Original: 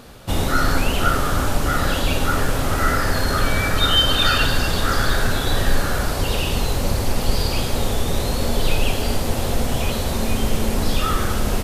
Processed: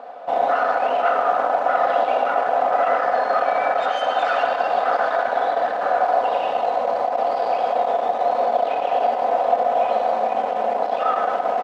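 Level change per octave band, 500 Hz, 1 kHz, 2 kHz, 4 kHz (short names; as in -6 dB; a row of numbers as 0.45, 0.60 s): +6.5, +8.5, -3.5, -15.5 dB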